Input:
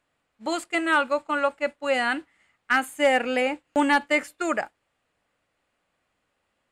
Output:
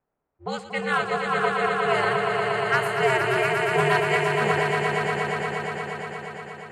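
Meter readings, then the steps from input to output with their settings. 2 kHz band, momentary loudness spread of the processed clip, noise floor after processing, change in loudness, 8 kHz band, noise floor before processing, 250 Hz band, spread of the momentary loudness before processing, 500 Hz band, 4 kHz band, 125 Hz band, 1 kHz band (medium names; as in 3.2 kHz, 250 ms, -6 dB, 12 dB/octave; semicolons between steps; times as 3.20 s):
+2.0 dB, 13 LU, -81 dBFS, +1.0 dB, -0.5 dB, -76 dBFS, -4.0 dB, 9 LU, +3.0 dB, +2.0 dB, no reading, +3.0 dB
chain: ring modulator 130 Hz; level-controlled noise filter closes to 990 Hz, open at -21.5 dBFS; echo with a slow build-up 118 ms, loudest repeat 5, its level -6 dB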